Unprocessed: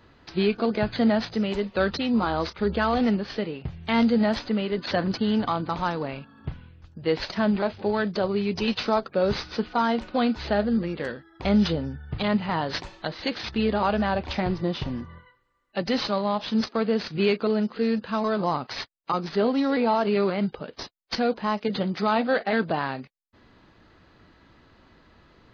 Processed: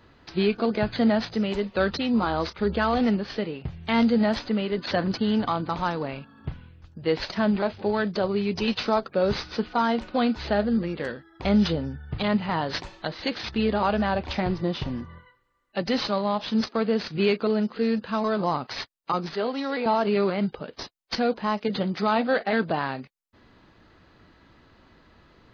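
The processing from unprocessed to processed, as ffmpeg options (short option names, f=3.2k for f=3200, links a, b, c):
-filter_complex "[0:a]asettb=1/sr,asplit=3[a][b][c];[a]atrim=end=19.344[d];[b]atrim=start=19.34:end=19.86,asetpts=PTS-STARTPTS,afade=t=in:d=0.004:c=qsin,afade=t=out:st=0.516:d=0.004:c=qsin,highpass=f=580:p=1[e];[c]atrim=start=19.856[f];[d][e]acrossfade=d=0.004:c1=hsin:c2=qsin[g];[g][f]acrossfade=d=0.004:c1=qsin:c2=hsin"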